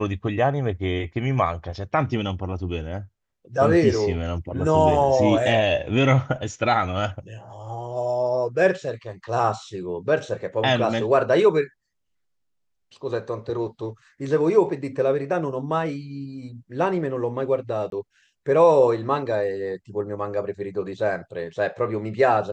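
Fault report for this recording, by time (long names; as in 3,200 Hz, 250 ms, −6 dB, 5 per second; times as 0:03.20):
0:17.90–0:17.92: drop-out 22 ms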